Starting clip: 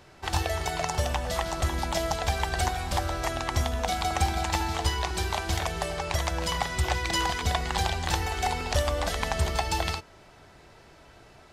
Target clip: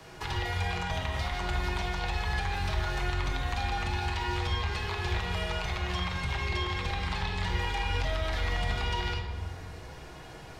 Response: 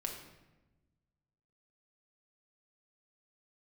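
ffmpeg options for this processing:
-filter_complex "[0:a]acrossover=split=120|700|4000[link_01][link_02][link_03][link_04];[link_04]acompressor=threshold=-53dB:ratio=10[link_05];[link_01][link_02][link_03][link_05]amix=inputs=4:normalize=0,alimiter=limit=-20dB:level=0:latency=1:release=37,acrossover=split=85|1500|3700[link_06][link_07][link_08][link_09];[link_06]acompressor=threshold=-38dB:ratio=4[link_10];[link_07]acompressor=threshold=-44dB:ratio=4[link_11];[link_08]acompressor=threshold=-42dB:ratio=4[link_12];[link_09]acompressor=threshold=-54dB:ratio=4[link_13];[link_10][link_11][link_12][link_13]amix=inputs=4:normalize=0[link_14];[1:a]atrim=start_sample=2205,asetrate=32634,aresample=44100[link_15];[link_14][link_15]afir=irnorm=-1:irlink=0,asetrate=48000,aresample=44100,volume=4dB"

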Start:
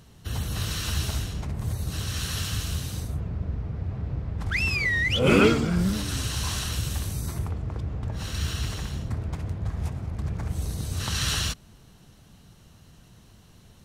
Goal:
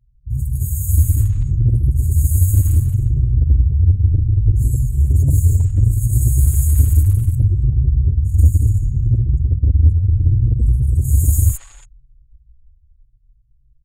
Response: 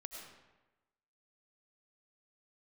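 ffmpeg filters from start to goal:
-filter_complex "[0:a]anlmdn=6.31,aemphasis=mode=production:type=50fm,afftfilt=real='re*(1-between(b*sr/4096,140,6500))':imag='im*(1-between(b*sr/4096,140,6500))':win_size=4096:overlap=0.75,adynamicequalizer=threshold=0.00794:dfrequency=110:dqfactor=1.1:tfrequency=110:tqfactor=1.1:attack=5:release=100:ratio=0.375:range=2.5:mode=boostabove:tftype=bell,acrossover=split=100[link_01][link_02];[link_01]dynaudnorm=framelen=170:gausssize=13:maxgain=9dB[link_03];[link_02]tremolo=f=79:d=0.261[link_04];[link_03][link_04]amix=inputs=2:normalize=0,aeval=exprs='0.398*(cos(1*acos(clip(val(0)/0.398,-1,1)))-cos(1*PI/2))+0.0224*(cos(2*acos(clip(val(0)/0.398,-1,1)))-cos(2*PI/2))+0.0355*(cos(5*acos(clip(val(0)/0.398,-1,1)))-cos(5*PI/2))+0.0126*(cos(7*acos(clip(val(0)/0.398,-1,1)))-cos(7*PI/2))+0.0141*(cos(8*acos(clip(val(0)/0.398,-1,1)))-cos(8*PI/2))':channel_layout=same,asplit=2[link_05][link_06];[link_06]adynamicsmooth=sensitivity=2:basefreq=810,volume=-1.5dB[link_07];[link_05][link_07]amix=inputs=2:normalize=0,acrossover=split=780|4600[link_08][link_09][link_10];[link_10]adelay=40[link_11];[link_09]adelay=320[link_12];[link_08][link_12][link_11]amix=inputs=3:normalize=0,asplit=2[link_13][link_14];[link_14]adelay=6.5,afreqshift=0.67[link_15];[link_13][link_15]amix=inputs=2:normalize=1,volume=4dB"

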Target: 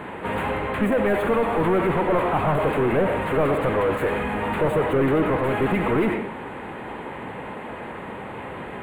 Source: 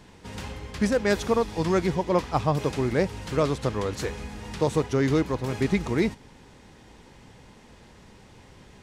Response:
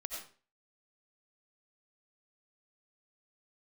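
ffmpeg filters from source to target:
-filter_complex "[0:a]asplit=2[link_01][link_02];[1:a]atrim=start_sample=2205[link_03];[link_02][link_03]afir=irnorm=-1:irlink=0,volume=-7.5dB[link_04];[link_01][link_04]amix=inputs=2:normalize=0,asplit=2[link_05][link_06];[link_06]highpass=frequency=720:poles=1,volume=34dB,asoftclip=type=tanh:threshold=-8.5dB[link_07];[link_05][link_07]amix=inputs=2:normalize=0,lowpass=frequency=1200:poles=1,volume=-6dB,asuperstop=centerf=5200:order=4:qfactor=0.72,asplit=2[link_08][link_09];[link_09]asetrate=55563,aresample=44100,atempo=0.793701,volume=-11dB[link_10];[link_08][link_10]amix=inputs=2:normalize=0,volume=-4.5dB"

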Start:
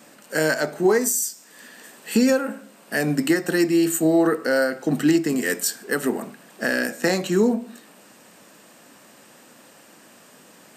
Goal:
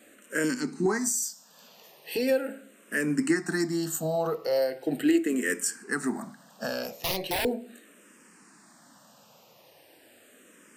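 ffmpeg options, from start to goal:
ffmpeg -i in.wav -filter_complex "[0:a]asettb=1/sr,asplit=3[link_01][link_02][link_03];[link_01]atrim=end=0.444[link_04];[link_02]atrim=start=0.44:end=0.86,asetpts=PTS-STARTPTS,afade=type=in:duration=0.004:curve=qsin,afade=type=out:start_time=0.416:duration=0.004:curve=qsin,equalizer=frequency=250:width_type=o:width=0.67:gain=11,equalizer=frequency=630:width_type=o:width=0.67:gain=-12,equalizer=frequency=1600:width_type=o:width=0.67:gain=-11,equalizer=frequency=4000:width_type=o:width=0.67:gain=10,equalizer=frequency=10000:width_type=o:width=0.67:gain=-3[link_05];[link_03]atrim=start=0.856[link_06];[link_04][link_05]acrossfade=duration=0.004:curve1=hsin:curve2=qsin[link_07];[link_07][link_06]acrossfade=duration=0.004:curve1=qsin:curve2=hsin,asettb=1/sr,asplit=3[link_08][link_09][link_10];[link_08]atrim=end=6.964[link_11];[link_09]atrim=start=6.96:end=7.45,asetpts=PTS-STARTPTS,afade=type=in:duration=0.004:curve=qsin,afade=type=out:start_time=0.486:duration=0.004:curve=qsin,aeval=exprs='(mod(6.68*val(0)+1,2)-1)/6.68':channel_layout=same[link_12];[link_10]atrim=start=7.446[link_13];[link_11][link_12]acrossfade=duration=0.004:curve1=hsin:curve2=qsin[link_14];[link_14][link_13]acrossfade=duration=0.004:curve1=qsin:curve2=hsin,asplit=2[link_15][link_16];[link_16]afreqshift=-0.39[link_17];[link_15][link_17]amix=inputs=2:normalize=1,volume=-3.5dB" out.wav

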